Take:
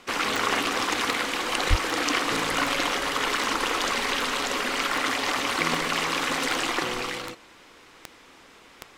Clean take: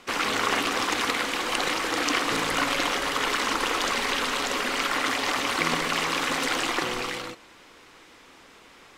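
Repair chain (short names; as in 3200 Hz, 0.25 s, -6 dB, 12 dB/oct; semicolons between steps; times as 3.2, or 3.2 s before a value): de-click; de-plosive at 1.69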